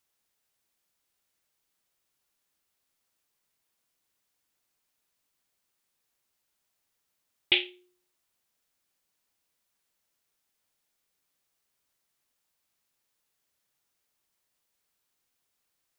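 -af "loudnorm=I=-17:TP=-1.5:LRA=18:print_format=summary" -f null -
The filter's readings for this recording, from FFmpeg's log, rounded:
Input Integrated:    -26.5 LUFS
Input True Peak:      -5.7 dBTP
Input LRA:             0.0 LU
Input Threshold:     -38.2 LUFS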